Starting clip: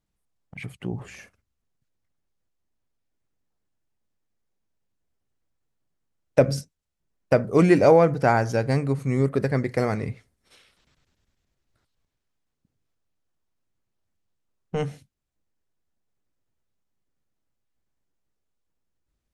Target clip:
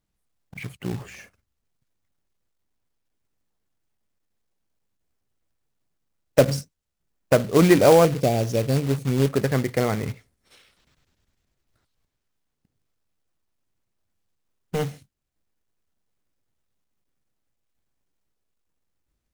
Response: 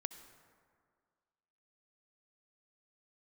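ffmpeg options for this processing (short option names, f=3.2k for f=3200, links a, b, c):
-filter_complex "[0:a]asettb=1/sr,asplit=3[a][b][c];[a]atrim=end=8.054[d];[b]atrim=start=8.05:end=9.26,asetpts=PTS-STARTPTS,afade=t=in:d=0.004:c=qsin,afade=t=out:st=1.206:d=0.004:c=qsin,asuperstop=centerf=1300:order=8:qfactor=0.72[e];[c]atrim=start=9.256[f];[d][e]acrossfade=d=0.004:c1=hsin:c2=qsin[g];[g][f]acrossfade=d=0.004:c1=qsin:c2=hsin,acrusher=bits=3:mode=log:mix=0:aa=0.000001,volume=1dB"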